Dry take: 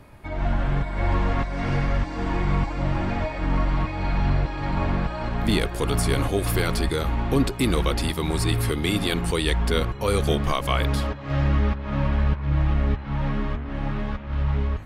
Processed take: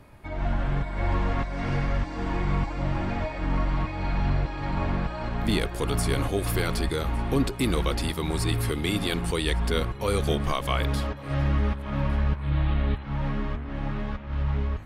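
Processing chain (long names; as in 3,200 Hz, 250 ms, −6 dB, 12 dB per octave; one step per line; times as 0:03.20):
0:12.41–0:13.03: high shelf with overshoot 4,900 Hz −9 dB, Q 3
feedback echo with a high-pass in the loop 1,157 ms, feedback 24%, level −22.5 dB
level −3 dB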